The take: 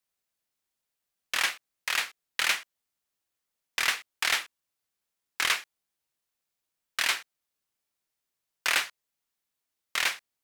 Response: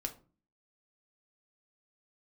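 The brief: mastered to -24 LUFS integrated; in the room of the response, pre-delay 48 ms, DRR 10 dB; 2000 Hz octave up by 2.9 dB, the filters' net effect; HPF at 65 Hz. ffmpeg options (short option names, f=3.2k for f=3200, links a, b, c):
-filter_complex "[0:a]highpass=65,equalizer=f=2k:t=o:g=3.5,asplit=2[a][b];[1:a]atrim=start_sample=2205,adelay=48[c];[b][c]afir=irnorm=-1:irlink=0,volume=-9.5dB[d];[a][d]amix=inputs=2:normalize=0,volume=2dB"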